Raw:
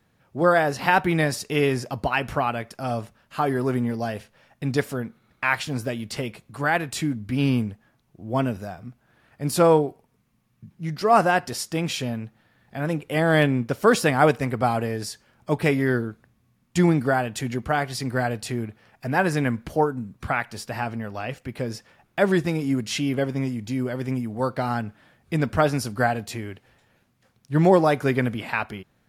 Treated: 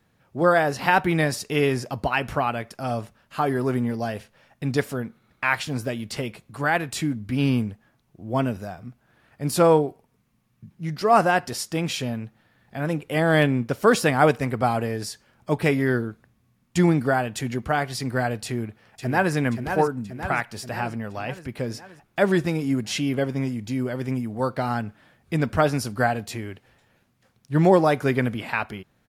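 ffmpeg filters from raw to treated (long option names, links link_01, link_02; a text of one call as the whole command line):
ffmpeg -i in.wav -filter_complex "[0:a]asplit=2[link_01][link_02];[link_02]afade=type=in:start_time=18.45:duration=0.01,afade=type=out:start_time=19.34:duration=0.01,aecho=0:1:530|1060|1590|2120|2650|3180|3710|4240:0.446684|0.26801|0.160806|0.0964837|0.0578902|0.0347341|0.0208405|0.0125043[link_03];[link_01][link_03]amix=inputs=2:normalize=0" out.wav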